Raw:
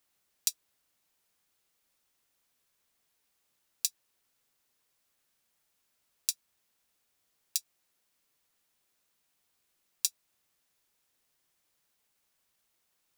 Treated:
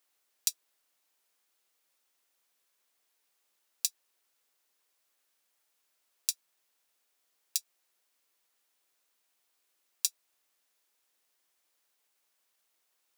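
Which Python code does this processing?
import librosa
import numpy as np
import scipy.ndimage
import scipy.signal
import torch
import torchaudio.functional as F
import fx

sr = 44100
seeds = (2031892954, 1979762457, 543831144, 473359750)

y = scipy.signal.sosfilt(scipy.signal.butter(2, 340.0, 'highpass', fs=sr, output='sos'), x)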